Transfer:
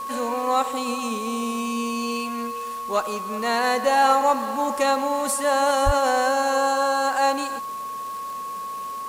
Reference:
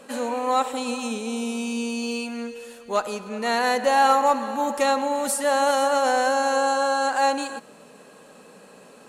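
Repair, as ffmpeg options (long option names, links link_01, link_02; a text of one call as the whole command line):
ffmpeg -i in.wav -filter_complex "[0:a]adeclick=threshold=4,bandreject=frequency=1100:width=30,asplit=3[link_01][link_02][link_03];[link_01]afade=type=out:start_time=5.85:duration=0.02[link_04];[link_02]highpass=frequency=140:width=0.5412,highpass=frequency=140:width=1.3066,afade=type=in:start_time=5.85:duration=0.02,afade=type=out:start_time=5.97:duration=0.02[link_05];[link_03]afade=type=in:start_time=5.97:duration=0.02[link_06];[link_04][link_05][link_06]amix=inputs=3:normalize=0,afwtdn=0.005" out.wav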